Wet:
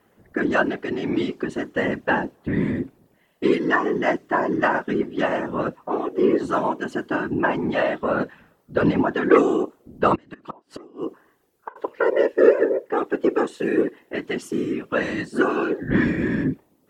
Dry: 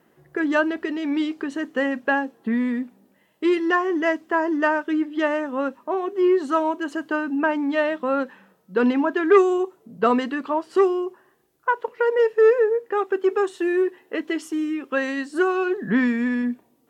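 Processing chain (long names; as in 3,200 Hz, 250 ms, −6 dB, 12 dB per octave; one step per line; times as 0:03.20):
0:10.15–0:11.76: gate with flip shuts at −17 dBFS, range −28 dB
random phases in short frames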